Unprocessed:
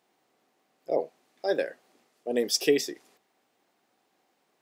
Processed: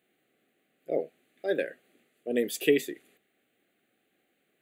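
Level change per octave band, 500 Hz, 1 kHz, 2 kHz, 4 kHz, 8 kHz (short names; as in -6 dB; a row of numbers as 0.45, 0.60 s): -1.0, -8.0, +1.0, -8.0, -7.0 dB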